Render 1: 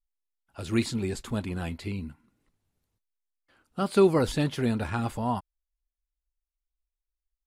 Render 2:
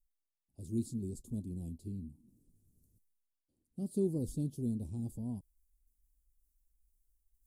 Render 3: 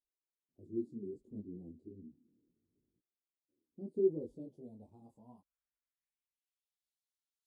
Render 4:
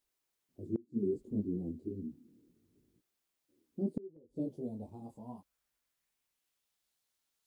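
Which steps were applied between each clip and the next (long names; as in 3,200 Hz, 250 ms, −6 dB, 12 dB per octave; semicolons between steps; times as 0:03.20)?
Chebyshev band-stop filter 260–9,200 Hz, order 2; reversed playback; upward compression, threshold −47 dBFS; reversed playback; level −7.5 dB
band-pass filter sweep 370 Hz → 3,900 Hz, 0:03.98–0:06.82; micro pitch shift up and down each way 25 cents; level +5.5 dB
gate with flip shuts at −34 dBFS, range −30 dB; level +11 dB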